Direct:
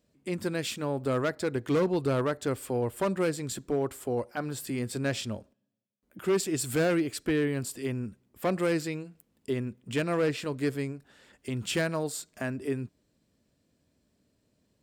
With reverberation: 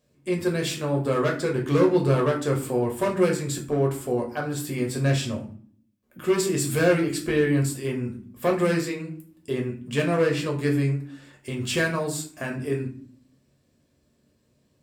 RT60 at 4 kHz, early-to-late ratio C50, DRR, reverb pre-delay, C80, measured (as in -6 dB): 0.30 s, 10.0 dB, -0.5 dB, 6 ms, 13.5 dB